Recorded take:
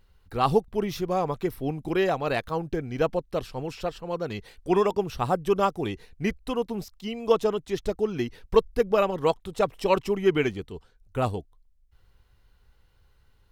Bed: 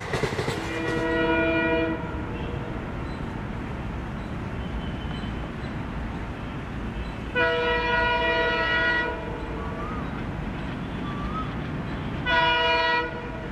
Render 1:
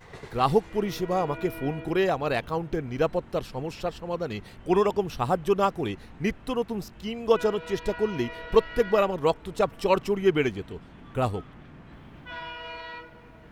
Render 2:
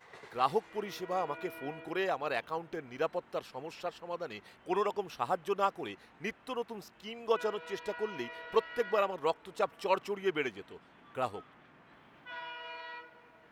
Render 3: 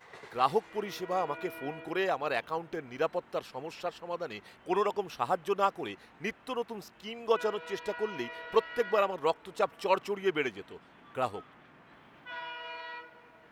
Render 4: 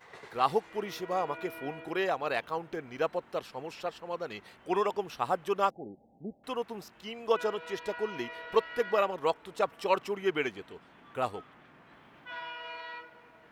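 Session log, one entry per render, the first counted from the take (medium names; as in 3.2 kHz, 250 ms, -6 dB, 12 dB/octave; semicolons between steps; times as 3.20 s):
add bed -17 dB
high-pass 1.2 kHz 6 dB/octave; treble shelf 2.4 kHz -9 dB
trim +2.5 dB
5.70–6.44 s: rippled Chebyshev low-pass 830 Hz, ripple 6 dB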